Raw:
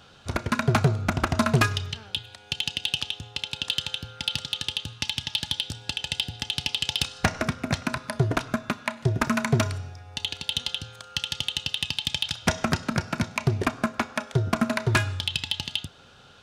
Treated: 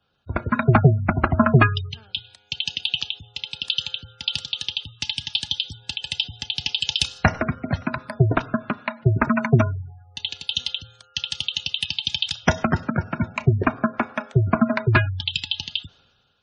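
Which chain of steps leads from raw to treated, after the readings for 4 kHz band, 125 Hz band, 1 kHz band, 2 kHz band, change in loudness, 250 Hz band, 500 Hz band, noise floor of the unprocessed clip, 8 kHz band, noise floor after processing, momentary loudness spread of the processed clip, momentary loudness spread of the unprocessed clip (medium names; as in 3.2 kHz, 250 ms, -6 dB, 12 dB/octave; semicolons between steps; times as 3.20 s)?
+2.5 dB, +6.0 dB, +4.5 dB, +3.0 dB, +4.0 dB, +5.0 dB, +4.5 dB, -51 dBFS, -3.0 dB, -58 dBFS, 12 LU, 8 LU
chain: spectral gate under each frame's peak -20 dB strong; three bands expanded up and down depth 70%; trim +3.5 dB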